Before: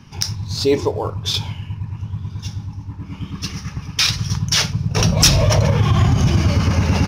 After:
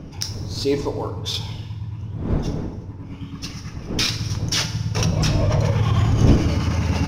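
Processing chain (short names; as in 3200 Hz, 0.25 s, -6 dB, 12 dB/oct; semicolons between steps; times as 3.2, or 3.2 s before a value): wind noise 230 Hz -23 dBFS; 5.05–5.59 LPF 1700 Hz 6 dB/oct; FDN reverb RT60 1.5 s, low-frequency decay 0.9×, high-frequency decay 0.75×, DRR 9 dB; gain -5.5 dB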